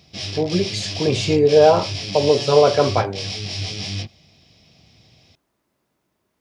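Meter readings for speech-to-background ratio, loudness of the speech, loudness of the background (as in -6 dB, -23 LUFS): 9.0 dB, -18.0 LUFS, -27.0 LUFS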